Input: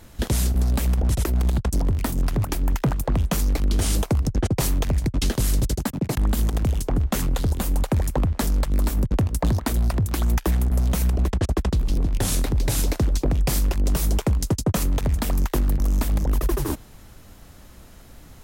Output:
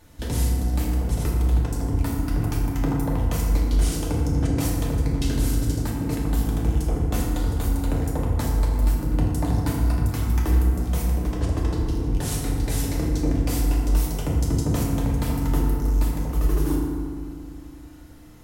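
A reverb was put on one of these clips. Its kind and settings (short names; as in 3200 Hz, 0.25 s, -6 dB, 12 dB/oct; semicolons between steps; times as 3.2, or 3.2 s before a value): FDN reverb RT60 2.1 s, low-frequency decay 1.35×, high-frequency decay 0.45×, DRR -4 dB; gain -8 dB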